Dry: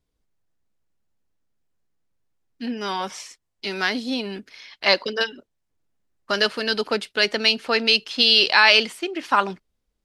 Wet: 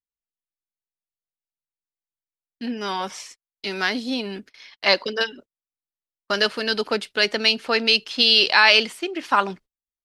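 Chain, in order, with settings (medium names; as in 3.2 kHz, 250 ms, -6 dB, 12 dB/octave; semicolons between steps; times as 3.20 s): gate -43 dBFS, range -29 dB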